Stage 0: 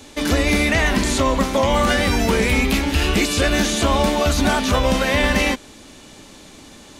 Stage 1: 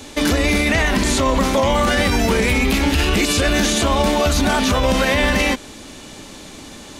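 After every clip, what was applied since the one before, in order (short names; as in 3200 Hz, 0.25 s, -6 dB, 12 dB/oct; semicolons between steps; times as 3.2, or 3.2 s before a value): limiter -13.5 dBFS, peak gain reduction 7.5 dB; gain +5.5 dB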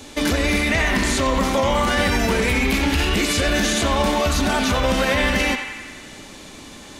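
narrowing echo 88 ms, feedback 72%, band-pass 1700 Hz, level -5 dB; gain -3 dB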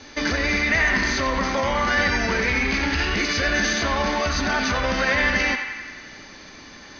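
rippled Chebyshev low-pass 6400 Hz, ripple 9 dB; gain +3.5 dB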